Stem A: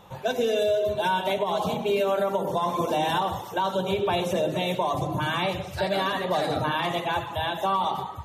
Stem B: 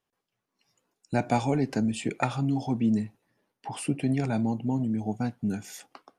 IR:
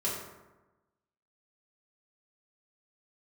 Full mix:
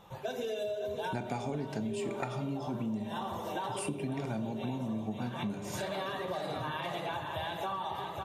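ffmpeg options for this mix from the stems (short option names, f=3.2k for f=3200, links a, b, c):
-filter_complex "[0:a]flanger=delay=5.9:depth=2.4:regen=-66:speed=1.7:shape=triangular,volume=-3dB,asplit=3[a][b][c];[b]volume=-13.5dB[d];[c]volume=-7.5dB[e];[1:a]volume=-0.5dB,asplit=3[f][g][h];[g]volume=-10dB[i];[h]apad=whole_len=363772[j];[a][j]sidechaincompress=threshold=-44dB:ratio=8:attack=16:release=118[k];[2:a]atrim=start_sample=2205[l];[d][i]amix=inputs=2:normalize=0[m];[m][l]afir=irnorm=-1:irlink=0[n];[e]aecho=0:1:549|1098|1647|2196|2745|3294|3843|4392:1|0.54|0.292|0.157|0.085|0.0459|0.0248|0.0134[o];[k][f][n][o]amix=inputs=4:normalize=0,acompressor=threshold=-33dB:ratio=6"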